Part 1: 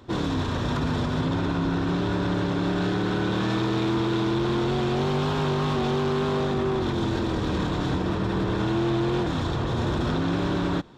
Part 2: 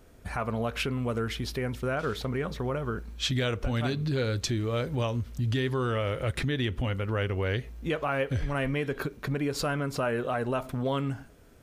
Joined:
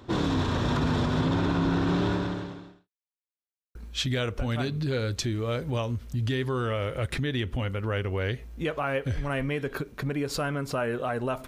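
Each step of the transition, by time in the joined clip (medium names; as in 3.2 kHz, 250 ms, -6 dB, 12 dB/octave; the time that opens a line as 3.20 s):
part 1
2.07–2.89 s: fade out quadratic
2.89–3.75 s: mute
3.75 s: go over to part 2 from 3.00 s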